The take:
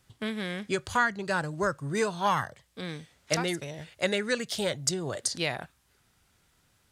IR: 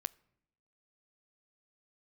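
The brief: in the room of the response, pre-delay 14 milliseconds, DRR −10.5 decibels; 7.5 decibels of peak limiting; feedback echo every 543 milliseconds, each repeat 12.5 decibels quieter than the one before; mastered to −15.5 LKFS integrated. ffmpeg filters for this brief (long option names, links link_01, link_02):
-filter_complex "[0:a]alimiter=limit=-19.5dB:level=0:latency=1,aecho=1:1:543|1086|1629:0.237|0.0569|0.0137,asplit=2[link_01][link_02];[1:a]atrim=start_sample=2205,adelay=14[link_03];[link_02][link_03]afir=irnorm=-1:irlink=0,volume=12dB[link_04];[link_01][link_04]amix=inputs=2:normalize=0,volume=6dB"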